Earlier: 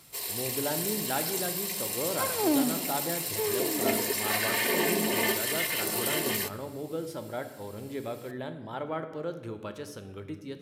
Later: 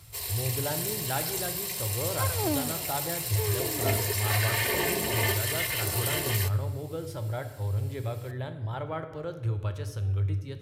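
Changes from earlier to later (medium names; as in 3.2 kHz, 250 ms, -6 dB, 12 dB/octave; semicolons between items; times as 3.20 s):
second sound: send off; master: add resonant low shelf 140 Hz +14 dB, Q 3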